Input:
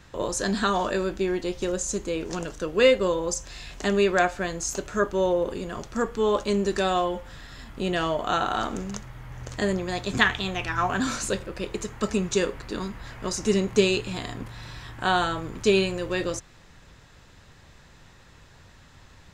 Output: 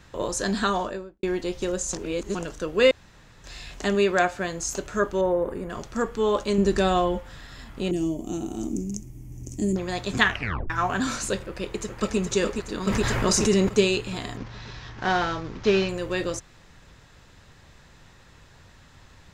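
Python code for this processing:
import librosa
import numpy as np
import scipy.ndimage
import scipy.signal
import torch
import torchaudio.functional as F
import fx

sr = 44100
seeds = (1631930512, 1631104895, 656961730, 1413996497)

y = fx.studio_fade_out(x, sr, start_s=0.66, length_s=0.57)
y = fx.highpass(y, sr, hz=60.0, slope=12, at=(3.95, 4.58))
y = fx.band_shelf(y, sr, hz=4400.0, db=-14.5, octaves=1.7, at=(5.21, 5.7))
y = fx.low_shelf(y, sr, hz=290.0, db=9.0, at=(6.58, 7.19))
y = fx.curve_eq(y, sr, hz=(140.0, 330.0, 490.0, 710.0, 1500.0, 2400.0, 4000.0, 5800.0, 12000.0), db=(0, 8, -13, -15, -30, -13, -20, 2, 5), at=(7.91, 9.76))
y = fx.echo_throw(y, sr, start_s=11.45, length_s=0.73, ms=420, feedback_pct=65, wet_db=-5.5)
y = fx.env_flatten(y, sr, amount_pct=70, at=(12.87, 13.69))
y = fx.cvsd(y, sr, bps=32000, at=(14.37, 15.89))
y = fx.edit(y, sr, fx.reverse_span(start_s=1.93, length_s=0.42),
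    fx.room_tone_fill(start_s=2.91, length_s=0.53),
    fx.tape_stop(start_s=10.29, length_s=0.41), tone=tone)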